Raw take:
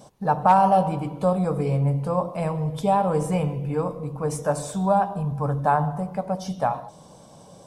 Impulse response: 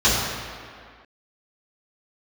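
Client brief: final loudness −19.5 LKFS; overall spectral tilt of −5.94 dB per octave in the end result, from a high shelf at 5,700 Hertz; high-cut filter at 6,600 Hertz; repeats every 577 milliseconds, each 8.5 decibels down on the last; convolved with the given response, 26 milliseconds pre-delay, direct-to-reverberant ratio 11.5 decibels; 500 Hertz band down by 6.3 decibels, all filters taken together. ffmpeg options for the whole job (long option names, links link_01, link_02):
-filter_complex "[0:a]lowpass=6600,equalizer=frequency=500:width_type=o:gain=-7.5,highshelf=frequency=5700:gain=-3,aecho=1:1:577|1154|1731|2308:0.376|0.143|0.0543|0.0206,asplit=2[link_01][link_02];[1:a]atrim=start_sample=2205,adelay=26[link_03];[link_02][link_03]afir=irnorm=-1:irlink=0,volume=-32.5dB[link_04];[link_01][link_04]amix=inputs=2:normalize=0,volume=5dB"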